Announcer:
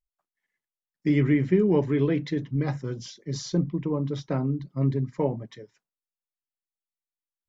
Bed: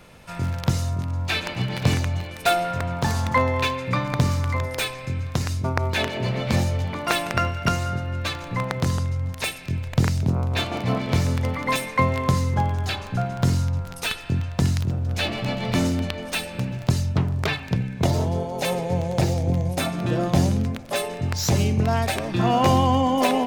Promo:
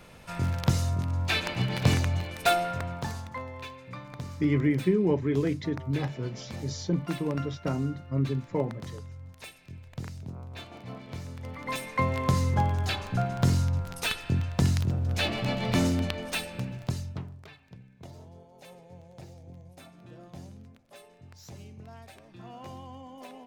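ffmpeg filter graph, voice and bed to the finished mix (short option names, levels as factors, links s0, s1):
-filter_complex "[0:a]adelay=3350,volume=0.708[s0];[1:a]volume=4.22,afade=t=out:st=2.39:d=0.91:silence=0.16788,afade=t=in:st=11.36:d=1.11:silence=0.177828,afade=t=out:st=16.09:d=1.34:silence=0.0749894[s1];[s0][s1]amix=inputs=2:normalize=0"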